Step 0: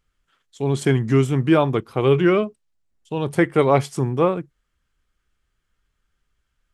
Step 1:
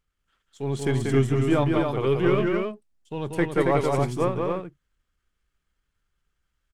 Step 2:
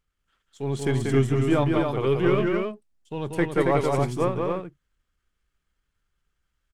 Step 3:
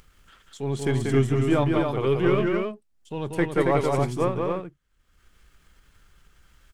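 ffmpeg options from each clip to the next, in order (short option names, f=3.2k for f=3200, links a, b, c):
-af "aeval=exprs='if(lt(val(0),0),0.708*val(0),val(0))':c=same,aecho=1:1:186.6|274.1:0.631|0.631,volume=-5dB"
-af anull
-af "acompressor=mode=upward:threshold=-38dB:ratio=2.5"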